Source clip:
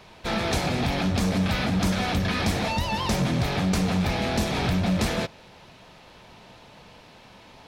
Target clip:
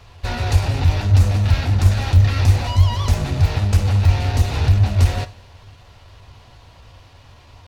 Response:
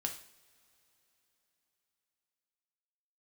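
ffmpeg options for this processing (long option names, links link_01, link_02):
-filter_complex "[0:a]lowshelf=frequency=120:width_type=q:width=3:gain=11.5,asetrate=48091,aresample=44100,atempo=0.917004,asplit=2[link_01][link_02];[1:a]atrim=start_sample=2205[link_03];[link_02][link_03]afir=irnorm=-1:irlink=0,volume=-5dB[link_04];[link_01][link_04]amix=inputs=2:normalize=0,volume=-4dB"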